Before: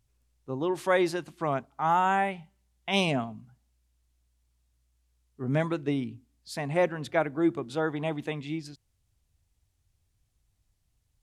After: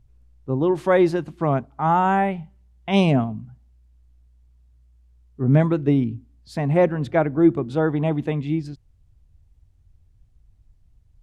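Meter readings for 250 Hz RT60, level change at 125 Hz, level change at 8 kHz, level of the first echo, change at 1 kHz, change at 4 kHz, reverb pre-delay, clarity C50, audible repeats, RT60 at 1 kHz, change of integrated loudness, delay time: none, +12.5 dB, n/a, none, +5.0 dB, -0.5 dB, none, none, none, none, +8.0 dB, none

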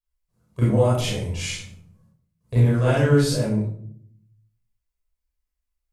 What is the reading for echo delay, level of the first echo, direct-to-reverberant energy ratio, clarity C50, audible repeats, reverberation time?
none, none, -9.5 dB, 0.5 dB, none, 0.60 s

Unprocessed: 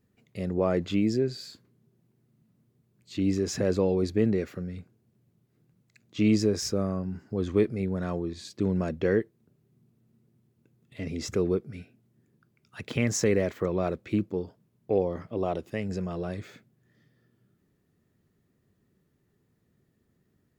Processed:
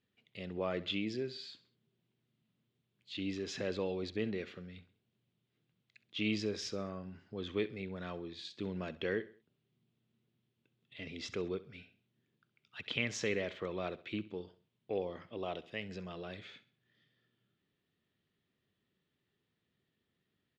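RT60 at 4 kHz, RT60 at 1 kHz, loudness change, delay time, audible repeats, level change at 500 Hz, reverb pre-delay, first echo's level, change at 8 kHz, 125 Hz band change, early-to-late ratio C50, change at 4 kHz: none, none, -11.0 dB, 66 ms, 3, -11.0 dB, none, -17.5 dB, -13.0 dB, -14.5 dB, none, -2.0 dB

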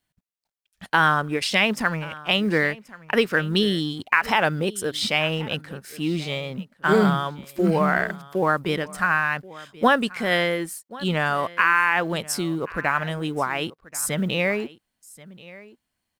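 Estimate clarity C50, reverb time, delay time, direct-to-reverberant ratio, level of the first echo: none, none, 1.082 s, none, -20.0 dB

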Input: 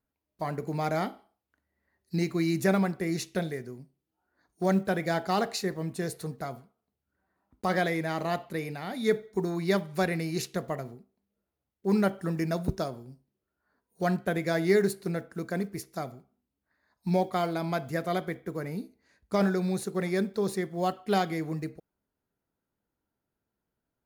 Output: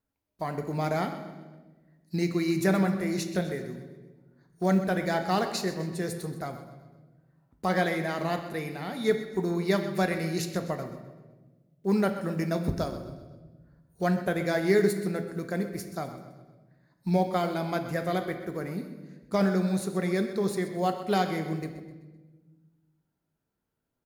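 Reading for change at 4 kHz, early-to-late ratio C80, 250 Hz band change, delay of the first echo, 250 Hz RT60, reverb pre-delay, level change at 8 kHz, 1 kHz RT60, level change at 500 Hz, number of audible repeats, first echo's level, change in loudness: +1.0 dB, 9.5 dB, +1.5 dB, 0.128 s, 1.8 s, 8 ms, +0.5 dB, 1.1 s, +1.0 dB, 4, -13.5 dB, +1.0 dB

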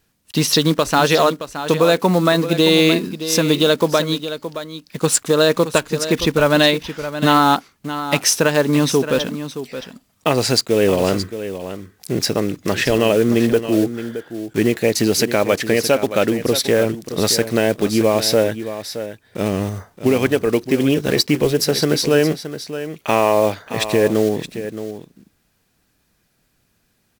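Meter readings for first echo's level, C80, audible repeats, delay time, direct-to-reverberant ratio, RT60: -11.5 dB, none, 1, 0.621 s, none, none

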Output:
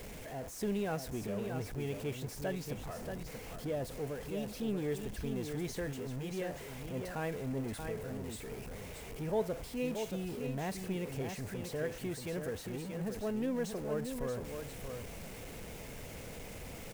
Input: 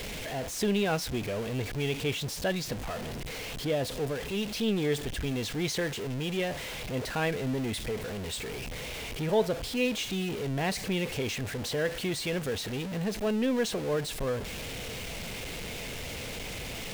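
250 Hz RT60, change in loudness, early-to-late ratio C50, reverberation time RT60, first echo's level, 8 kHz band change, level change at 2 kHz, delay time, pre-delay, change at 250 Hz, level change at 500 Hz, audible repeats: none, -7.5 dB, none, none, -6.5 dB, -9.5 dB, -11.5 dB, 0.631 s, none, -6.0 dB, -6.5 dB, 1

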